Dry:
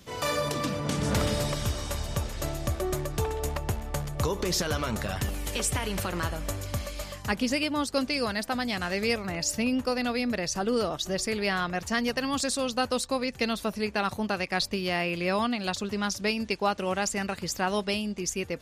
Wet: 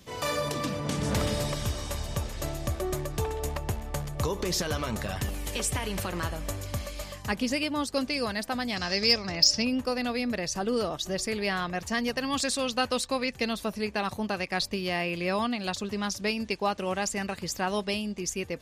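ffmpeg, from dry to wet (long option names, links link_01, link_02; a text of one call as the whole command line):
ffmpeg -i in.wav -filter_complex "[0:a]asettb=1/sr,asplit=3[link_01][link_02][link_03];[link_01]atrim=end=8.764[link_04];[link_02]atrim=start=8.76:end=9.65,asetpts=PTS-STARTPTS,afade=type=in:duration=0.004:curve=qsin,afade=type=out:start_time=0.886:duration=0.004:curve=qsin,lowpass=frequency=5200:width_type=q:width=7.7[link_05];[link_03]atrim=start=9.646[link_06];[link_04][link_05]acrossfade=duration=0.004:curve1=hsin:curve2=qsin[link_07];[link_07][link_06]acrossfade=duration=0.004:curve1=qsin:curve2=hsin,asettb=1/sr,asplit=3[link_08][link_09][link_10];[link_08]atrim=end=12.304[link_11];[link_09]atrim=start=12.3:end=13.33,asetpts=PTS-STARTPTS,afade=type=in:duration=0.004:curve=qsin,afade=type=out:start_time=1.026:duration=0.004:curve=qsin,equalizer=frequency=2400:width_type=o:width=1.8:gain=5[link_12];[link_10]atrim=start=13.326[link_13];[link_11][link_12]acrossfade=duration=0.004:curve1=hsin:curve2=qsin[link_14];[link_14][link_13]acrossfade=duration=0.004:curve1=qsin:curve2=hsin,acontrast=34,bandreject=frequency=1400:width=16,volume=-6.5dB" out.wav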